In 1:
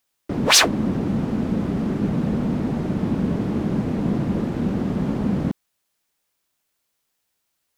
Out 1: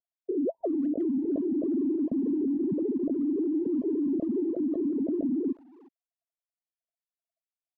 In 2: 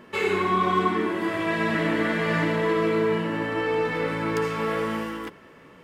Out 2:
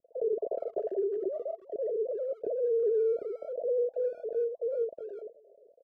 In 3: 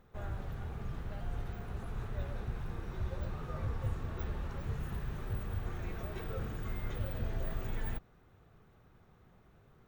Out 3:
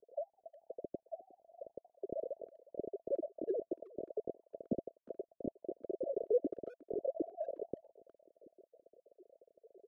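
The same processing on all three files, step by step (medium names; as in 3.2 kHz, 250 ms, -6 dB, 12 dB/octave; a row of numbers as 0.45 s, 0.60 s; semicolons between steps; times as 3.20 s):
formants replaced by sine waves; Chebyshev low-pass 670 Hz, order 8; peak limiter -21 dBFS; speakerphone echo 360 ms, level -20 dB; trim -1.5 dB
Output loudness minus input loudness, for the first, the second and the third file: -7.0 LU, -7.5 LU, -1.5 LU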